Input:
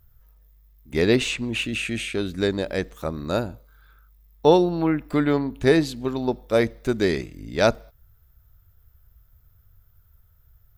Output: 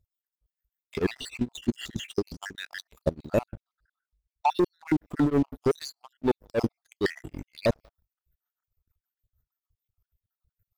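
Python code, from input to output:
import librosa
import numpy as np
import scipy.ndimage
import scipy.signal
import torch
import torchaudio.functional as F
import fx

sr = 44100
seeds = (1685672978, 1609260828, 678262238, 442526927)

y = fx.spec_dropout(x, sr, seeds[0], share_pct=65)
y = fx.peak_eq(y, sr, hz=5300.0, db=15.0, octaves=0.52, at=(2.16, 2.57))
y = fx.leveller(y, sr, passes=3)
y = fx.lowpass(y, sr, hz=8000.0, slope=24, at=(3.5, 4.5))
y = fx.leveller(y, sr, passes=1, at=(5.82, 6.22))
y = fx.level_steps(y, sr, step_db=17)
y = y * np.abs(np.cos(np.pi * 6.5 * np.arange(len(y)) / sr))
y = y * 10.0 ** (-2.5 / 20.0)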